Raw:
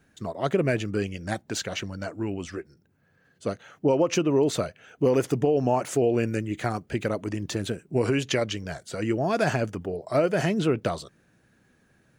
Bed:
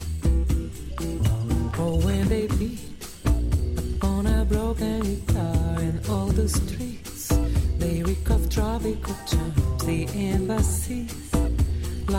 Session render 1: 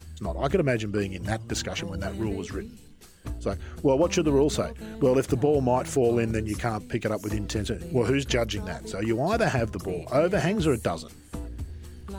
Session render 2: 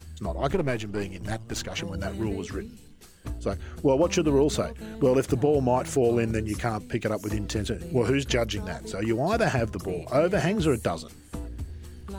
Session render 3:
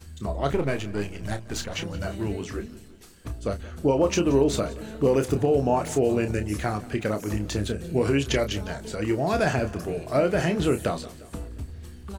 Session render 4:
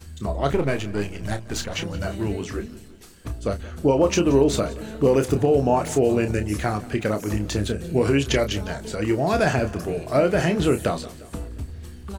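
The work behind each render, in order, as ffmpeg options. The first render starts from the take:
-filter_complex "[1:a]volume=-13.5dB[a];[0:a][a]amix=inputs=2:normalize=0"
-filter_complex "[0:a]asettb=1/sr,asplit=3[a][b][c];[a]atrim=end=0.534[d];[b]atrim=start=0.53:end=1.75,asetpts=PTS-STARTPTS,afade=t=in:d=0.004:c=qsin,afade=t=out:st=1.216:d=0.004:c=qsin,aeval=exprs='if(lt(val(0),0),0.447*val(0),val(0))':c=same[e];[c]atrim=start=1.746[f];[d][e]acrossfade=d=0.004:c1=hsin:c2=qsin[g];[g][f]acrossfade=d=0.004:c1=qsin:c2=hsin"
-filter_complex "[0:a]asplit=2[a][b];[b]adelay=29,volume=-8.5dB[c];[a][c]amix=inputs=2:normalize=0,aecho=1:1:176|352|528|704|880:0.106|0.0593|0.0332|0.0186|0.0104"
-af "volume=3dB"

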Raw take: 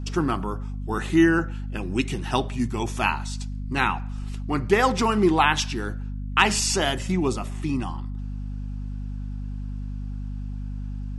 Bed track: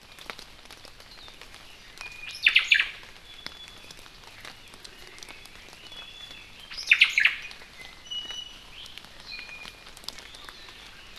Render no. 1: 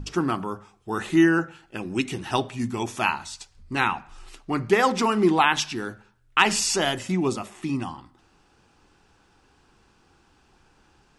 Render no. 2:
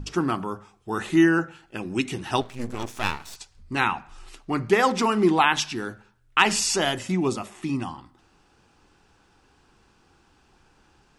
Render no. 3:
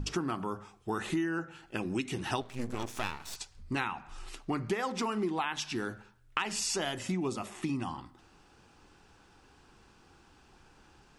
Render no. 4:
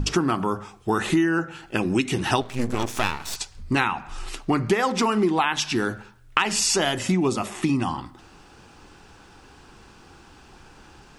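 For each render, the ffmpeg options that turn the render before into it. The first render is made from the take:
-af "bandreject=f=50:t=h:w=6,bandreject=f=100:t=h:w=6,bandreject=f=150:t=h:w=6,bandreject=f=200:t=h:w=6,bandreject=f=250:t=h:w=6"
-filter_complex "[0:a]asettb=1/sr,asplit=3[a][b][c];[a]atrim=end=2.414[d];[b]atrim=start=2.41:end=3.36,asetpts=PTS-STARTPTS,afade=t=in:d=0.004:c=qsin,afade=t=out:st=0.946:d=0.004:c=qsin,aeval=exprs='max(val(0),0)':c=same[e];[c]atrim=start=3.356[f];[d][e]acrossfade=d=0.004:c1=hsin:c2=qsin[g];[g][f]acrossfade=d=0.004:c1=qsin:c2=hsin"
-af "acompressor=threshold=-30dB:ratio=6"
-af "volume=11dB"

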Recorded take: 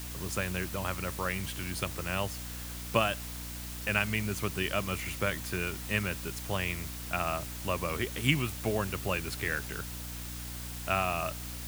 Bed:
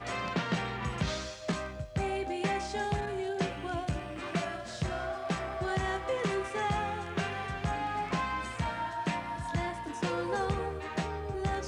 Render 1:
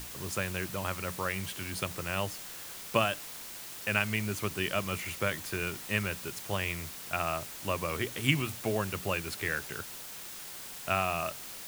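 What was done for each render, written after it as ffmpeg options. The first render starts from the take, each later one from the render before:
-af "bandreject=f=60:t=h:w=6,bandreject=f=120:t=h:w=6,bandreject=f=180:t=h:w=6,bandreject=f=240:t=h:w=6,bandreject=f=300:t=h:w=6"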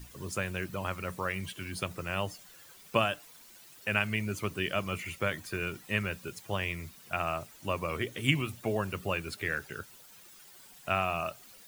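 -af "afftdn=nr=13:nf=-44"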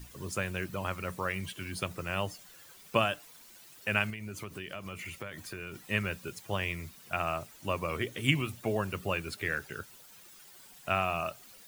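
-filter_complex "[0:a]asettb=1/sr,asplit=3[a][b][c];[a]atrim=end=4.104[d];[b]atrim=start=4.1:end=5.87,asetpts=PTS-STARTPTS,afade=t=in:d=0.004:c=qsin,afade=t=out:st=1.766:d=0.004:c=qsin,acompressor=threshold=-37dB:ratio=5:attack=3.2:release=140:knee=1:detection=peak[e];[c]atrim=start=5.866[f];[d][e]acrossfade=d=0.004:c1=hsin:c2=qsin[g];[g][f]acrossfade=d=0.004:c1=qsin:c2=hsin"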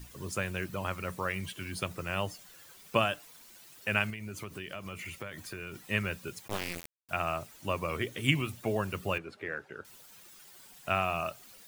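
-filter_complex "[0:a]asettb=1/sr,asplit=3[a][b][c];[a]atrim=end=6.484[d];[b]atrim=start=6.48:end=7.09,asetpts=PTS-STARTPTS,afade=t=in:d=0.004:c=qsin,afade=t=out:st=0.606:d=0.004:c=qsin,acrusher=bits=3:dc=4:mix=0:aa=0.000001[e];[c]atrim=start=7.086[f];[d][e]acrossfade=d=0.004:c1=hsin:c2=qsin[g];[g][f]acrossfade=d=0.004:c1=qsin:c2=hsin,asettb=1/sr,asplit=3[h][i][j];[h]atrim=end=9.184[k];[i]atrim=start=9.18:end=9.85,asetpts=PTS-STARTPTS,afade=t=in:d=0.004:c=qsin,afade=t=out:st=0.666:d=0.004:c=qsin,bandpass=f=590:t=q:w=0.62[l];[j]atrim=start=9.846[m];[k][l]acrossfade=d=0.004:c1=hsin:c2=qsin[n];[n][m]acrossfade=d=0.004:c1=qsin:c2=hsin"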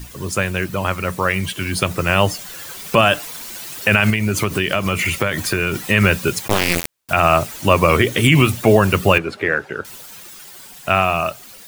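-af "dynaudnorm=f=210:g=21:m=11.5dB,alimiter=level_in=13.5dB:limit=-1dB:release=50:level=0:latency=1"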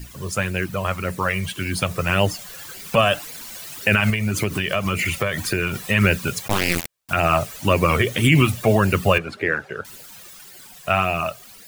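-af "flanger=delay=0.4:depth=1.4:regen=-33:speed=1.8:shape=sinusoidal"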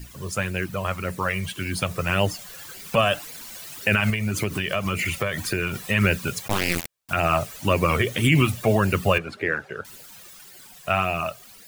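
-af "volume=-3dB"

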